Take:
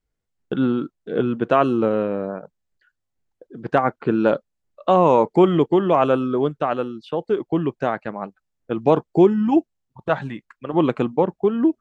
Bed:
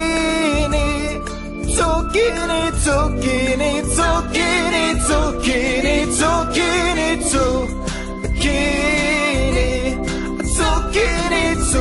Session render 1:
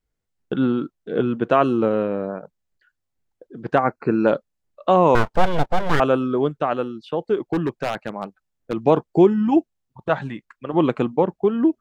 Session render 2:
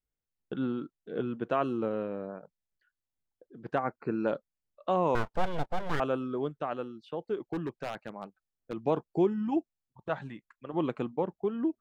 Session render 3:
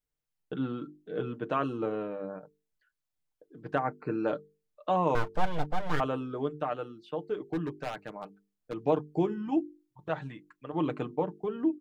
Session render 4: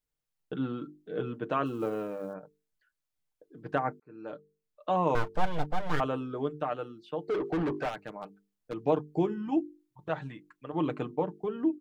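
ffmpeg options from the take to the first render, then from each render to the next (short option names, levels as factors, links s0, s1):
-filter_complex "[0:a]asplit=3[s0][s1][s2];[s0]afade=t=out:st=3.79:d=0.02[s3];[s1]asuperstop=centerf=3300:order=12:qfactor=2.6,afade=t=in:st=3.79:d=0.02,afade=t=out:st=4.26:d=0.02[s4];[s2]afade=t=in:st=4.26:d=0.02[s5];[s3][s4][s5]amix=inputs=3:normalize=0,asettb=1/sr,asplit=3[s6][s7][s8];[s6]atrim=end=5.154[s9];[s7]atrim=start=5.15:end=6,asetpts=PTS-STARTPTS,afade=t=in:d=0.004:c=qsin,afade=t=out:st=0.846:d=0.004:c=qsin,aeval=exprs='abs(val(0))':c=same[s10];[s8]atrim=start=5.996[s11];[s9][s10]acrossfade=d=0.004:c1=hsin:c2=qsin[s12];[s12][s11]acrossfade=d=0.004:c1=qsin:c2=hsin,asettb=1/sr,asplit=3[s13][s14][s15];[s13]atrim=end=7.534[s16];[s14]atrim=start=7.53:end=8.76,asetpts=PTS-STARTPTS,afade=t=in:d=0.004:c=qsin,afade=t=out:st=1.226:d=0.004:c=qsin,aeval=exprs='0.178*(abs(mod(val(0)/0.178+3,4)-2)-1)':c=same[s17];[s15]atrim=start=8.756[s18];[s16][s17]acrossfade=d=0.004:c1=hsin:c2=qsin[s19];[s19][s18]acrossfade=d=0.004:c1=qsin:c2=hsin"
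-af "volume=0.251"
-af "bandreject=f=50:t=h:w=6,bandreject=f=100:t=h:w=6,bandreject=f=150:t=h:w=6,bandreject=f=200:t=h:w=6,bandreject=f=250:t=h:w=6,bandreject=f=300:t=h:w=6,bandreject=f=350:t=h:w=6,bandreject=f=400:t=h:w=6,bandreject=f=450:t=h:w=6,aecho=1:1:6.6:0.5"
-filter_complex "[0:a]asplit=3[s0][s1][s2];[s0]afade=t=out:st=1.65:d=0.02[s3];[s1]acrusher=bits=8:mode=log:mix=0:aa=0.000001,afade=t=in:st=1.65:d=0.02,afade=t=out:st=2.33:d=0.02[s4];[s2]afade=t=in:st=2.33:d=0.02[s5];[s3][s4][s5]amix=inputs=3:normalize=0,asettb=1/sr,asplit=3[s6][s7][s8];[s6]atrim=end=7.284[s9];[s7]atrim=start=7.28:end=7.89,asetpts=PTS-STARTPTS,afade=t=in:d=0.004:c=qsin,afade=t=out:st=0.606:d=0.004:c=qsin,asplit=2[s10][s11];[s11]highpass=f=720:p=1,volume=25.1,asoftclip=type=tanh:threshold=0.0794[s12];[s10][s12]amix=inputs=2:normalize=0,lowpass=f=1100:p=1,volume=0.501[s13];[s8]atrim=start=7.886[s14];[s9][s13]acrossfade=d=0.004:c1=hsin:c2=qsin[s15];[s15][s14]acrossfade=d=0.004:c1=qsin:c2=hsin,asplit=2[s16][s17];[s16]atrim=end=4,asetpts=PTS-STARTPTS,afade=t=out:st=3.996:d=0.004:c=hsin[s18];[s17]atrim=start=4,asetpts=PTS-STARTPTS,afade=t=in:d=1.01[s19];[s18][s19]concat=n=2:v=0:a=1"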